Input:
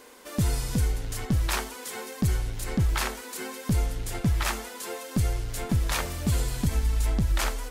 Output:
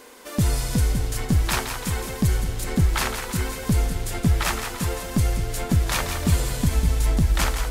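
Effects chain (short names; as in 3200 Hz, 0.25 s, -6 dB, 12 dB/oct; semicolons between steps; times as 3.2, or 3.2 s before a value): split-band echo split 580 Hz, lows 0.563 s, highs 0.168 s, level -7.5 dB; gain +4 dB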